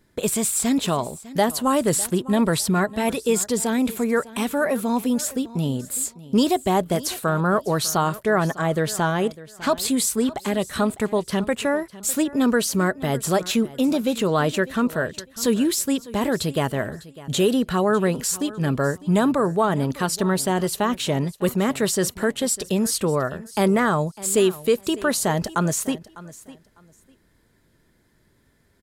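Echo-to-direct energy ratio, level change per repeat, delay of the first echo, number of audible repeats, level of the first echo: −18.5 dB, −13.5 dB, 602 ms, 2, −18.5 dB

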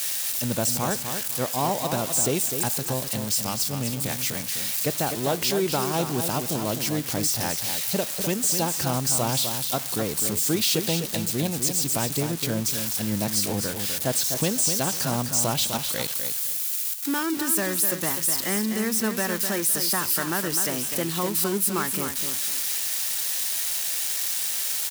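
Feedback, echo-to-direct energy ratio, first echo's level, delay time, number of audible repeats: 24%, −7.0 dB, −7.5 dB, 253 ms, 3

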